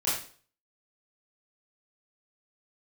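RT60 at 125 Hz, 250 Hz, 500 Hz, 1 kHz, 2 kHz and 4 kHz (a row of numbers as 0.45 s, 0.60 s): 0.50 s, 0.45 s, 0.45 s, 0.40 s, 0.40 s, 0.40 s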